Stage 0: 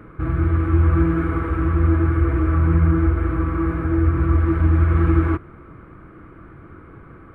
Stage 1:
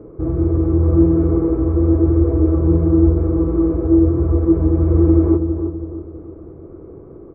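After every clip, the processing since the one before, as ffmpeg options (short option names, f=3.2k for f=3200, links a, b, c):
-filter_complex "[0:a]firequalizer=gain_entry='entry(220,0);entry(400,12);entry(1500,-20)':delay=0.05:min_phase=1,asplit=2[a][b];[b]adelay=325,lowpass=f=1.2k:p=1,volume=-7dB,asplit=2[c][d];[d]adelay=325,lowpass=f=1.2k:p=1,volume=0.43,asplit=2[e][f];[f]adelay=325,lowpass=f=1.2k:p=1,volume=0.43,asplit=2[g][h];[h]adelay=325,lowpass=f=1.2k:p=1,volume=0.43,asplit=2[i][j];[j]adelay=325,lowpass=f=1.2k:p=1,volume=0.43[k];[a][c][e][g][i][k]amix=inputs=6:normalize=0"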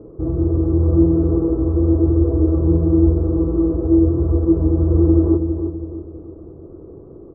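-af "lowpass=1k,volume=-1dB"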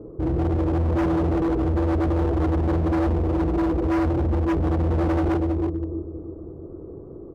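-af "asoftclip=type=hard:threshold=-19.5dB"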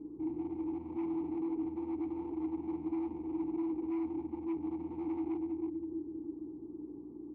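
-filter_complex "[0:a]aeval=exprs='val(0)+0.0126*(sin(2*PI*60*n/s)+sin(2*PI*2*60*n/s)/2+sin(2*PI*3*60*n/s)/3+sin(2*PI*4*60*n/s)/4+sin(2*PI*5*60*n/s)/5)':c=same,acompressor=threshold=-27dB:ratio=6,asplit=3[a][b][c];[a]bandpass=f=300:t=q:w=8,volume=0dB[d];[b]bandpass=f=870:t=q:w=8,volume=-6dB[e];[c]bandpass=f=2.24k:t=q:w=8,volume=-9dB[f];[d][e][f]amix=inputs=3:normalize=0"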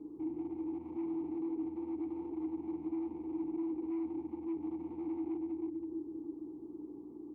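-filter_complex "[0:a]lowshelf=f=270:g=-9.5,acrossover=split=530[a][b];[b]alimiter=level_in=29.5dB:limit=-24dB:level=0:latency=1:release=199,volume=-29.5dB[c];[a][c]amix=inputs=2:normalize=0,volume=3dB"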